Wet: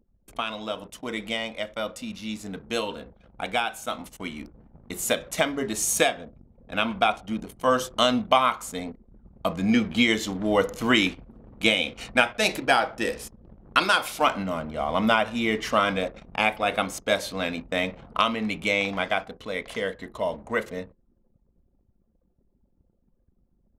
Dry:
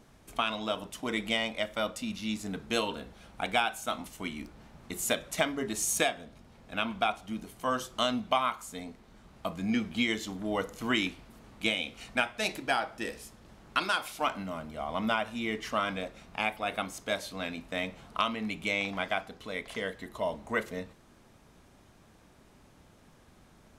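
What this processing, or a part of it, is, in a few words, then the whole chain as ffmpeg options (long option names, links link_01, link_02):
voice memo with heavy noise removal: -af "equalizer=frequency=510:width_type=o:width=0.23:gain=5.5,anlmdn=0.00631,dynaudnorm=framelen=900:gausssize=13:maxgain=11.5dB"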